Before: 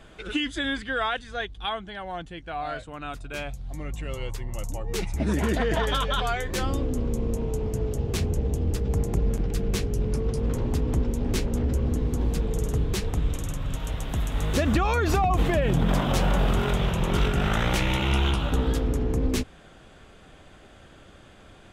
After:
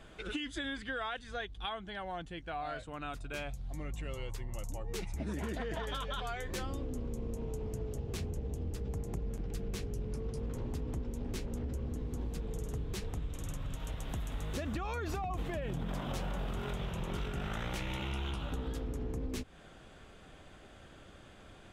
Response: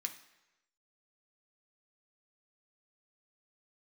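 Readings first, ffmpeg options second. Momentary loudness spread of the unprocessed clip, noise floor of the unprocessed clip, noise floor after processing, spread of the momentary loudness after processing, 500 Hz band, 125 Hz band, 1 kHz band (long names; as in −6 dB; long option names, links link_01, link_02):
11 LU, −50 dBFS, −55 dBFS, 5 LU, −12.5 dB, −13.0 dB, −12.0 dB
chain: -af "acompressor=threshold=-31dB:ratio=4,volume=-4.5dB"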